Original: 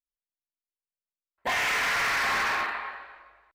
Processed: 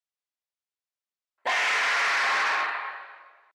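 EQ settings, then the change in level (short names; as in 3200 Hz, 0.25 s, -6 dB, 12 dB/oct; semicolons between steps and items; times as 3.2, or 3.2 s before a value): BPF 460–7000 Hz; +2.0 dB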